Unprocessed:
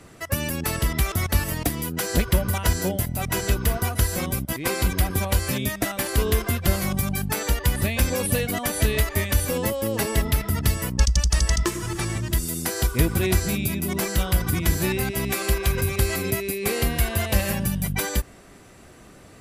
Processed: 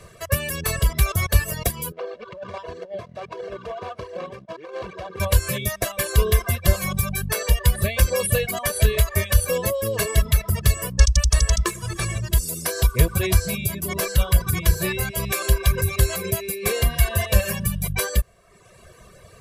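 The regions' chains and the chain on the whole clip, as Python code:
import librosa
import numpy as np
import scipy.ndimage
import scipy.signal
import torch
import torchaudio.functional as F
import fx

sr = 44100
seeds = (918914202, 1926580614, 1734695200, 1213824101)

y = fx.chain(x, sr, fx.median_filter(points=25),
    fx.bandpass_edges(low_hz=360.0, high_hz=4400.0),
    fx.over_compress(threshold_db=-33.0, ratio=-0.5), at=(1.92, 5.2))
y = fx.dereverb_blind(y, sr, rt60_s=0.96)
y = y + 0.9 * np.pad(y, (int(1.8 * sr / 1000.0), 0))[:len(y)]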